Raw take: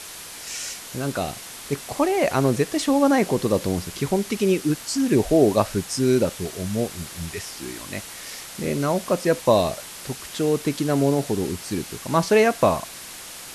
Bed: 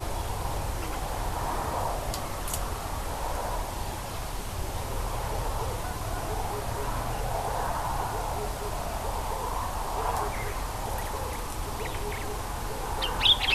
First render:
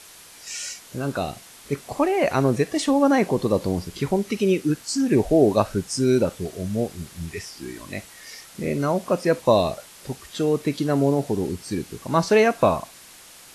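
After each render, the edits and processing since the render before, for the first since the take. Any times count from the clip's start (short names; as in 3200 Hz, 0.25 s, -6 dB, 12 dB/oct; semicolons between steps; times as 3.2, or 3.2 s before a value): noise print and reduce 8 dB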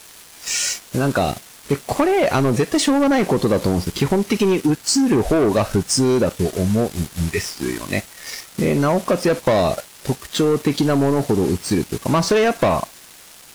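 sample leveller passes 3; compressor, threshold -14 dBFS, peak gain reduction 6.5 dB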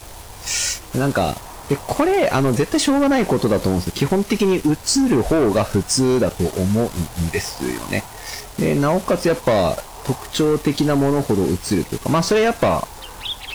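add bed -7 dB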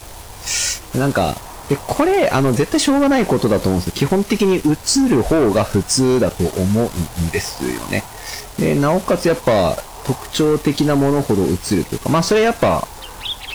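gain +2 dB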